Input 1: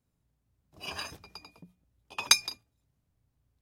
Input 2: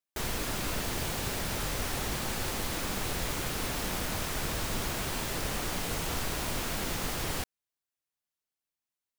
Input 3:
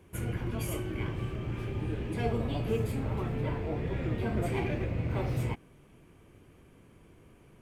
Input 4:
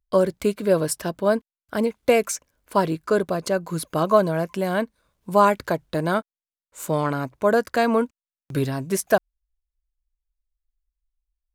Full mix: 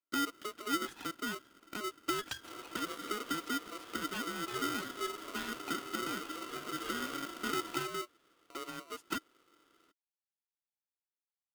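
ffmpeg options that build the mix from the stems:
-filter_complex "[0:a]volume=-2.5dB[a];[1:a]lowpass=1.1k,volume=-13dB[b];[2:a]highshelf=f=3.7k:g=10.5,adelay=2300,volume=2.5dB[c];[3:a]aeval=exprs='0.631*sin(PI/2*3.16*val(0)/0.631)':c=same,acompressor=threshold=-12dB:ratio=6,volume=-13.5dB[d];[a][b][c][d]amix=inputs=4:normalize=0,asplit=3[e][f][g];[e]bandpass=f=530:t=q:w=8,volume=0dB[h];[f]bandpass=f=1.84k:t=q:w=8,volume=-6dB[i];[g]bandpass=f=2.48k:t=q:w=8,volume=-9dB[j];[h][i][j]amix=inputs=3:normalize=0,aeval=exprs='val(0)*sgn(sin(2*PI*840*n/s))':c=same"

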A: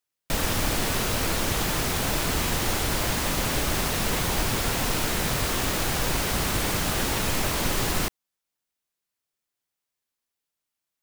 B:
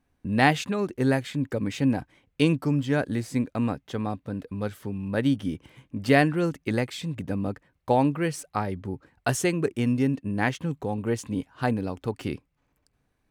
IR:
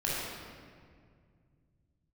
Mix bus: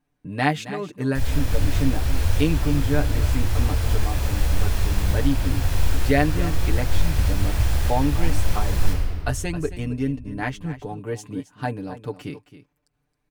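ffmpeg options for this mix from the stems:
-filter_complex "[0:a]lowshelf=f=120:t=q:w=1.5:g=13,adelay=850,volume=-12dB,asplit=2[a][b];[b]volume=-4dB[c];[1:a]aecho=1:1:6.8:0.72,volume=-4dB,asplit=3[d][e][f];[e]volume=-14dB[g];[f]apad=whole_len=523703[h];[a][h]sidechaincompress=threshold=-29dB:ratio=8:attack=16:release=494[i];[2:a]atrim=start_sample=2205[j];[c][j]afir=irnorm=-1:irlink=0[k];[g]aecho=0:1:269:1[l];[i][d][k][l]amix=inputs=4:normalize=0"

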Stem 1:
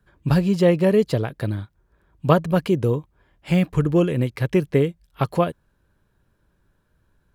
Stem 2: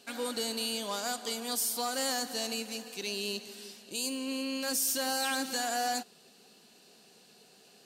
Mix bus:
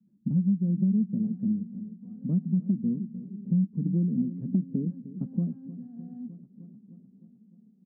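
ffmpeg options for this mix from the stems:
-filter_complex "[0:a]aeval=exprs='0.841*sin(PI/2*1.58*val(0)/0.841)':c=same,volume=3dB,asplit=2[a][b];[b]volume=-17dB[c];[1:a]dynaudnorm=f=740:g=5:m=6dB,adelay=250,volume=1.5dB[d];[c]aecho=0:1:305|610|915|1220|1525|1830|2135|2440:1|0.56|0.314|0.176|0.0983|0.0551|0.0308|0.0173[e];[a][d][e]amix=inputs=3:normalize=0,dynaudnorm=f=150:g=11:m=10dB,asuperpass=centerf=210:order=4:qfactor=3.9,acompressor=threshold=-22dB:ratio=6"

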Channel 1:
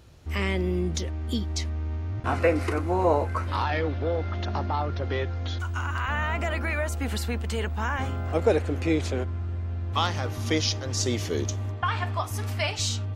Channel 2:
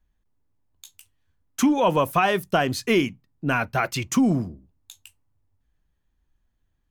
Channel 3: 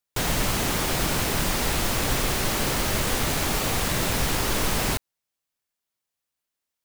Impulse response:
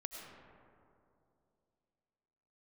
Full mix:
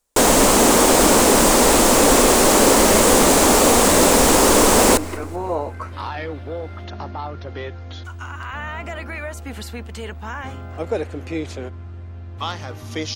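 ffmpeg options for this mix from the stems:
-filter_complex "[0:a]lowshelf=f=66:g=-7.5,adelay=2450,volume=-1.5dB[a];[1:a]volume=-13.5dB[b];[2:a]equalizer=f=125:t=o:w=1:g=-11,equalizer=f=250:t=o:w=1:g=11,equalizer=f=500:t=o:w=1:g=10,equalizer=f=1k:t=o:w=1:g=7,equalizer=f=8k:t=o:w=1:g=11,acontrast=32,volume=-1dB,asplit=3[c][d][e];[d]volume=-16dB[f];[e]volume=-23.5dB[g];[3:a]atrim=start_sample=2205[h];[f][h]afir=irnorm=-1:irlink=0[i];[g]aecho=0:1:193|386|579|772|965|1158:1|0.42|0.176|0.0741|0.0311|0.0131[j];[a][b][c][i][j]amix=inputs=5:normalize=0"

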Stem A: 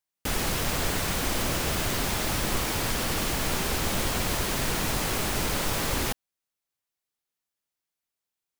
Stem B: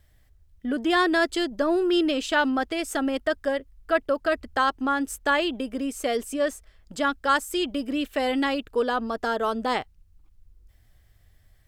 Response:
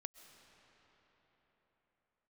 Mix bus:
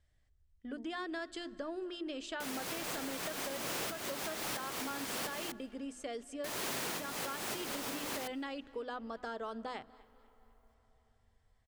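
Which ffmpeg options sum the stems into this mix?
-filter_complex "[0:a]highpass=210,adelay=2150,volume=-1dB,asplit=3[a][b][c];[a]atrim=end=5.52,asetpts=PTS-STARTPTS,afade=t=out:st=5.516:d=0.004:c=hsin[d];[b]atrim=start=5.52:end=6.44,asetpts=PTS-STARTPTS,volume=0[e];[c]atrim=start=6.44,asetpts=PTS-STARTPTS,afade=t=in:d=0.004:c=hsin[f];[d][e][f]concat=n=3:v=0:a=1,asplit=2[g][h];[h]volume=-21dB[i];[1:a]lowpass=f=9.2k:w=0.5412,lowpass=f=9.2k:w=1.3066,acompressor=threshold=-23dB:ratio=6,volume=-15dB,asplit=4[j][k][l][m];[k]volume=-6.5dB[n];[l]volume=-21dB[o];[m]apad=whole_len=473640[p];[g][p]sidechaincompress=threshold=-55dB:ratio=4:attack=48:release=232[q];[2:a]atrim=start_sample=2205[r];[i][n]amix=inputs=2:normalize=0[s];[s][r]afir=irnorm=-1:irlink=0[t];[o]aecho=0:1:246|492|738|984|1230|1476:1|0.4|0.16|0.064|0.0256|0.0102[u];[q][j][t][u]amix=inputs=4:normalize=0,bandreject=f=50:t=h:w=6,bandreject=f=100:t=h:w=6,bandreject=f=150:t=h:w=6,bandreject=f=200:t=h:w=6,bandreject=f=250:t=h:w=6,bandreject=f=300:t=h:w=6,bandreject=f=350:t=h:w=6,acompressor=threshold=-35dB:ratio=6"

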